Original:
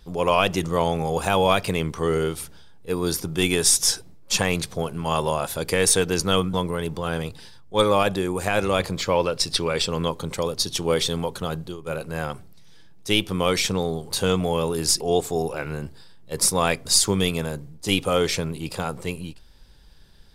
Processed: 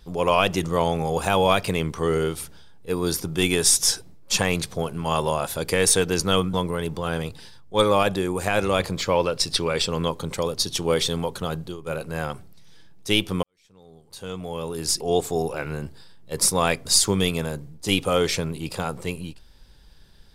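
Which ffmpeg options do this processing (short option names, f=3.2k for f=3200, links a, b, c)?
-filter_complex "[0:a]asplit=2[a][b];[a]atrim=end=13.43,asetpts=PTS-STARTPTS,afade=t=out:st=13.426:d=0.004:c=hsin[c];[b]atrim=start=13.43,asetpts=PTS-STARTPTS,afade=t=in:d=1.77:c=qua[d];[c][d]concat=n=2:v=0:a=1"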